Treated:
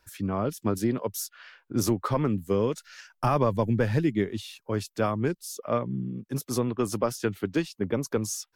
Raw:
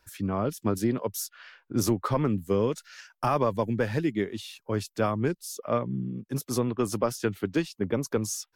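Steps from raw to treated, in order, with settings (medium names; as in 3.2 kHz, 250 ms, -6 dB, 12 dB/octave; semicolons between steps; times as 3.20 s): 2.87–4.55 s: bass shelf 160 Hz +8.5 dB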